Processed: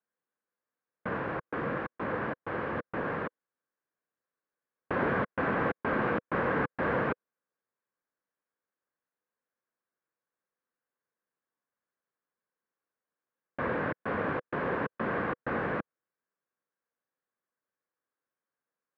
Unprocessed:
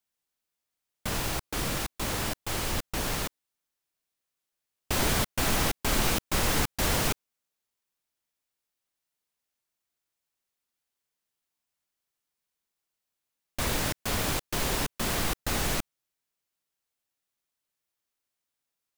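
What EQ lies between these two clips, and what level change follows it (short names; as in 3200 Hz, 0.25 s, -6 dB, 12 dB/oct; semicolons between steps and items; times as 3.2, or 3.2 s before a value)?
speaker cabinet 190–2100 Hz, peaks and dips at 500 Hz +8 dB, 1100 Hz +7 dB, 1600 Hz +9 dB; low shelf 460 Hz +9 dB; -5.5 dB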